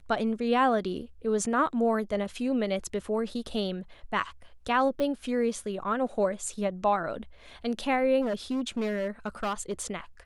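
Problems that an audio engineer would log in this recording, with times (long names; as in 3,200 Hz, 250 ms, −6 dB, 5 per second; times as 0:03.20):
0:05.00: click −20 dBFS
0:08.21–0:09.87: clipping −25.5 dBFS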